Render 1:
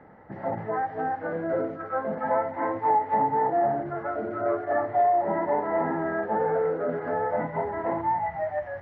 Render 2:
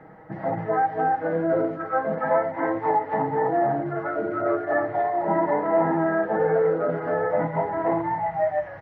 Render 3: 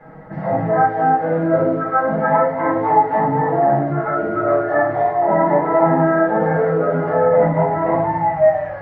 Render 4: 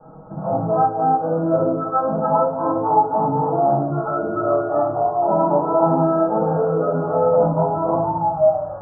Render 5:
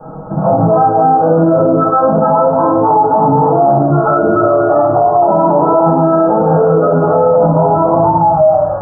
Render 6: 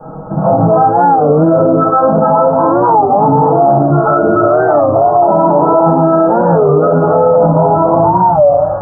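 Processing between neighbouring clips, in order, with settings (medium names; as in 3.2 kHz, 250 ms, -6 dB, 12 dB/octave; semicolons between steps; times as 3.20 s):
comb 6.3 ms; trim +2.5 dB
simulated room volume 380 m³, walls furnished, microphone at 5.3 m; trim -2.5 dB
steep low-pass 1.4 kHz 96 dB/octave; trim -2 dB
loudness maximiser +15 dB; trim -1.5 dB
warped record 33 1/3 rpm, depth 160 cents; trim +1 dB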